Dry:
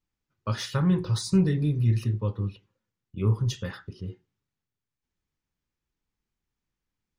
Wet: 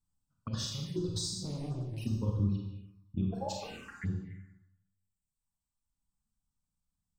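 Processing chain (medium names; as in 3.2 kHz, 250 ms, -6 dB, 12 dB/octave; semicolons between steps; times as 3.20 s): reverb removal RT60 1.9 s; 3.31–4.03 s: ring modulator 550 Hz -> 1.9 kHz; compressor with a negative ratio -30 dBFS, ratio -0.5; resonant low shelf 350 Hz +6.5 dB, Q 1.5; 1.39–1.98 s: hard clipper -29 dBFS, distortion -8 dB; peaking EQ 8.2 kHz +14 dB 0.26 oct; hum notches 60/120/180 Hz; Schroeder reverb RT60 1 s, combs from 32 ms, DRR -0.5 dB; touch-sensitive phaser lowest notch 360 Hz, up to 2.1 kHz, full sweep at -23.5 dBFS; trim -8.5 dB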